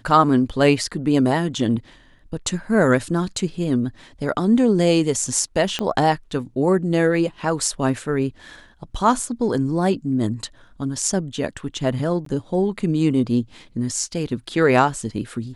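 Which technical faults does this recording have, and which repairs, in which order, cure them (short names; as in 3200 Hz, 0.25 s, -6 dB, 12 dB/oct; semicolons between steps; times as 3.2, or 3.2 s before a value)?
5.79 pop -10 dBFS
12.25–12.26 gap 13 ms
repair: de-click; interpolate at 12.25, 13 ms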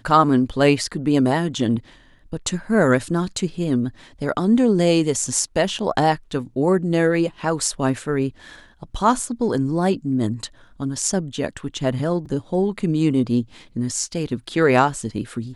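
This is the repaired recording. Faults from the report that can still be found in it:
5.79 pop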